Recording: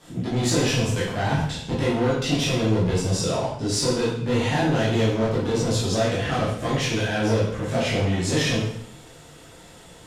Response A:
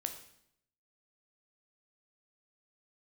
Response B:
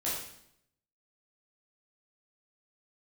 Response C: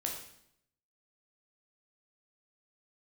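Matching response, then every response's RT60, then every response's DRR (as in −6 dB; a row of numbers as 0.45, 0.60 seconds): B; 0.70, 0.70, 0.70 seconds; 5.5, −8.5, −0.5 decibels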